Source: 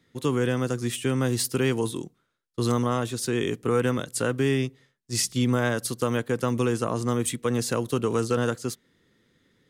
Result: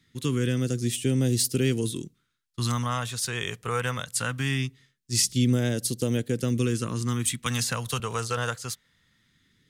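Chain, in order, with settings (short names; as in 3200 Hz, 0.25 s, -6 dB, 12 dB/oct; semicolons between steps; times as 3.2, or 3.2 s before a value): phaser stages 2, 0.21 Hz, lowest notch 290–1100 Hz; 7.46–8 three-band squash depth 100%; gain +2 dB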